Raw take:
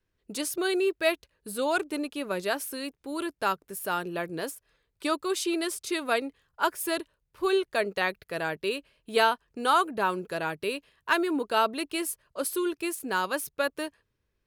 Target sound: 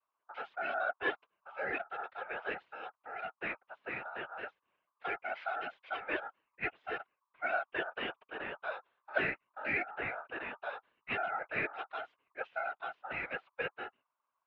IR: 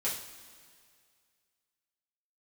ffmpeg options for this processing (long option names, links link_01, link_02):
-af "aeval=exprs='val(0)*sin(2*PI*1300*n/s)':channel_layout=same,highpass=frequency=510:width_type=q:width=0.5412,highpass=frequency=510:width_type=q:width=1.307,lowpass=frequency=3100:width_type=q:width=0.5176,lowpass=frequency=3100:width_type=q:width=0.7071,lowpass=frequency=3100:width_type=q:width=1.932,afreqshift=-230,afftfilt=real='hypot(re,im)*cos(2*PI*random(0))':imag='hypot(re,im)*sin(2*PI*random(1))':win_size=512:overlap=0.75"